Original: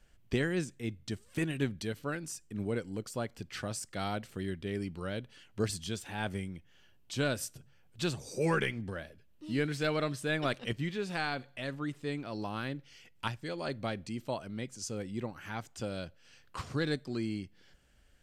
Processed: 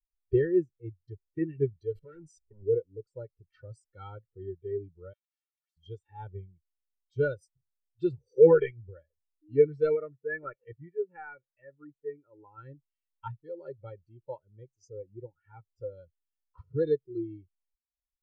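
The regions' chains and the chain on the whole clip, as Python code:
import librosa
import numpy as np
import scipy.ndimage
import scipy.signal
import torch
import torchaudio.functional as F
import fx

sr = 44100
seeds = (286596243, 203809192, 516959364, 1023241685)

y = fx.chain(x, sr, fx.leveller(passes=5),
    fx.level_steps(step_db=19), at=(1.95, 2.63))
y = fx.chain(y, sr, fx.steep_highpass(hz=1400.0, slope=48),
    fx.spectral_comp(ratio=10.0), at=(5.13, 5.77))
y = fx.chain(y, sr, fx.lowpass(hz=2500.0, slope=24),
    fx.low_shelf(hz=470.0, db=-5.0), at=(9.95, 12.58))
y = fx.high_shelf(y, sr, hz=8700.0, db=-3.5)
y = y + 0.69 * np.pad(y, (int(2.2 * sr / 1000.0), 0))[:len(y)]
y = fx.spectral_expand(y, sr, expansion=2.5)
y = F.gain(torch.from_numpy(y), 8.0).numpy()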